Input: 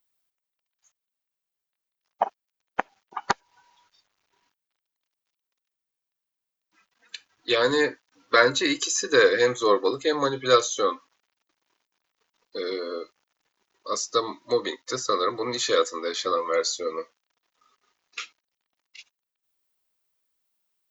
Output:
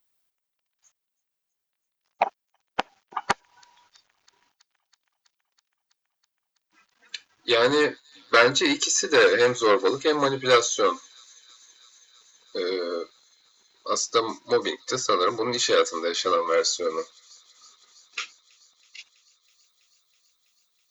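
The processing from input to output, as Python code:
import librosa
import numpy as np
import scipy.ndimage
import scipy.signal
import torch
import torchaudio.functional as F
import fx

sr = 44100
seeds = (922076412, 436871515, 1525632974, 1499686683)

y = fx.echo_wet_highpass(x, sr, ms=326, feedback_pct=81, hz=3900.0, wet_db=-23)
y = fx.transformer_sat(y, sr, knee_hz=1900.0)
y = y * 10.0 ** (3.0 / 20.0)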